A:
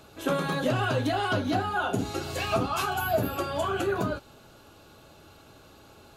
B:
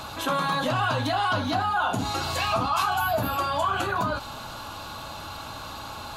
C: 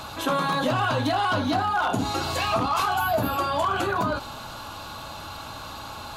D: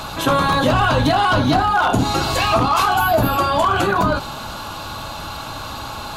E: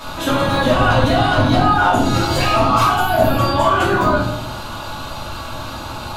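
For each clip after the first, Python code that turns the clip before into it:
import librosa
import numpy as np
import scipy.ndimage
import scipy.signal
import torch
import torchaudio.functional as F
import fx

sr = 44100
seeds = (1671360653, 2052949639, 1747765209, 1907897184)

y1 = fx.graphic_eq_15(x, sr, hz=(160, 400, 1000, 4000), db=(-3, -11, 10, 5))
y1 = fx.env_flatten(y1, sr, amount_pct=50)
y1 = y1 * librosa.db_to_amplitude(-2.0)
y2 = np.minimum(y1, 2.0 * 10.0 ** (-18.0 / 20.0) - y1)
y2 = fx.dynamic_eq(y2, sr, hz=350.0, q=0.94, threshold_db=-40.0, ratio=4.0, max_db=5)
y3 = fx.octave_divider(y2, sr, octaves=1, level_db=-3.0)
y3 = y3 * librosa.db_to_amplitude(7.5)
y4 = fx.room_shoebox(y3, sr, seeds[0], volume_m3=160.0, walls='mixed', distance_m=2.7)
y4 = y4 * librosa.db_to_amplitude(-8.5)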